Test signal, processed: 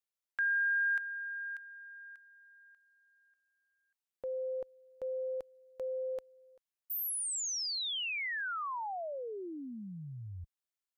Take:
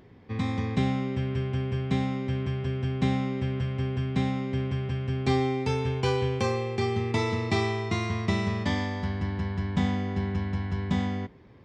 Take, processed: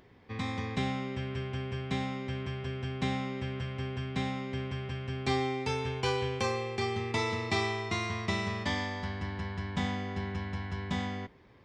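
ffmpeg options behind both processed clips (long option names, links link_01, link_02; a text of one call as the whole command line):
ffmpeg -i in.wav -af "equalizer=frequency=150:width=0.32:gain=-8" out.wav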